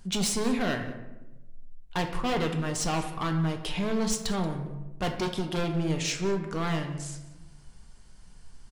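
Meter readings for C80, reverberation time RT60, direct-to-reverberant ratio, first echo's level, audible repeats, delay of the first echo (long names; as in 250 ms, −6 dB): 10.0 dB, 1.1 s, 4.0 dB, −19.0 dB, 1, 181 ms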